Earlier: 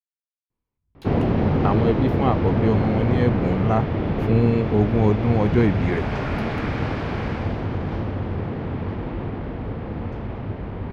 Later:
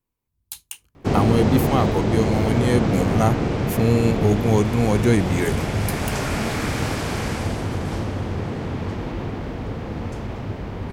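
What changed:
speech: entry -0.50 s; master: remove distance through air 310 m

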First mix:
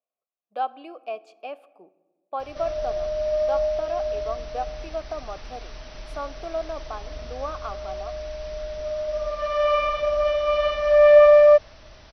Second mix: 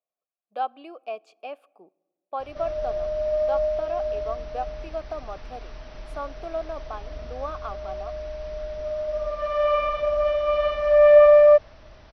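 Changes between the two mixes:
speech: send -10.0 dB; background: add treble shelf 3.3 kHz -11 dB

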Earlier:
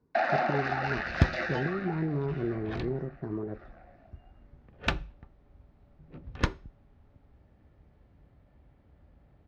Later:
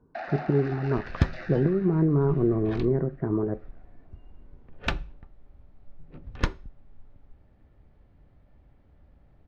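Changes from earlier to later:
speech +8.5 dB; first sound -9.0 dB; master: remove high-pass 46 Hz

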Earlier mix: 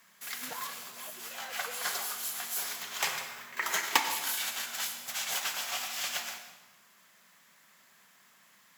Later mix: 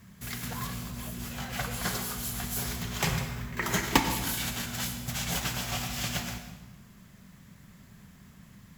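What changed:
background: remove high-pass 750 Hz 12 dB/octave; master: remove high-pass 77 Hz

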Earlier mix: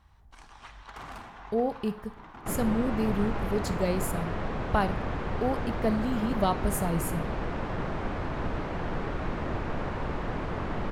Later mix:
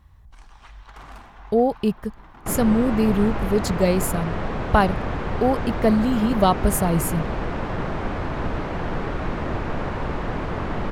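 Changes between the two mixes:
speech +10.5 dB; second sound +5.5 dB; reverb: off

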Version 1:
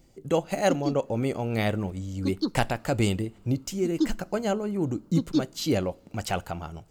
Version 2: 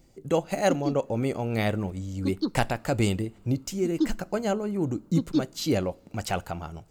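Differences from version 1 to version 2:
speech: add peaking EQ 3.1 kHz -2.5 dB 0.21 oct; background: add distance through air 87 m

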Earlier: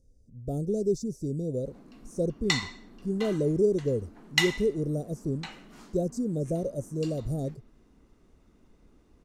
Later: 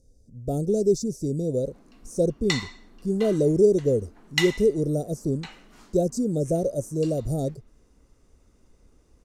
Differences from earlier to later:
speech +9.0 dB; master: add bass shelf 420 Hz -6 dB

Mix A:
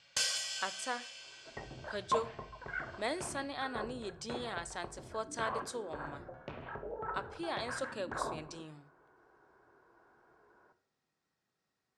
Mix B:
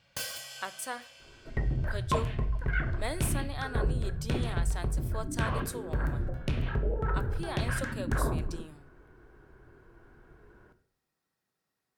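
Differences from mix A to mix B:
first sound: add tilt EQ -3 dB/octave; second sound: remove band-pass filter 880 Hz, Q 1.4; master: remove low-pass 7.7 kHz 24 dB/octave

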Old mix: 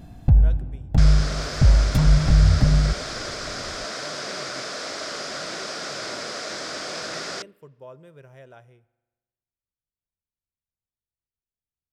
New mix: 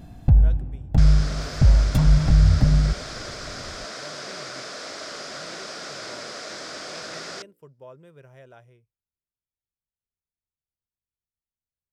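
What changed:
second sound -3.5 dB; reverb: off

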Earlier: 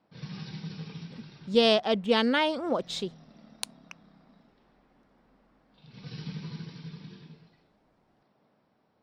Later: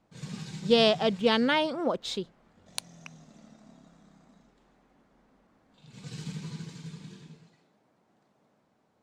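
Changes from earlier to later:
speech: entry -0.85 s; background: remove brick-wall FIR low-pass 5.8 kHz

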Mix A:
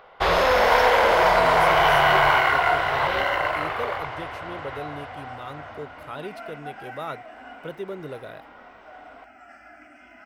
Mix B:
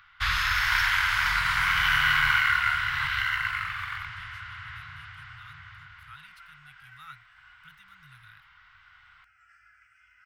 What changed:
speech -7.0 dB; second sound -8.5 dB; master: add elliptic band-stop 120–1400 Hz, stop band 70 dB

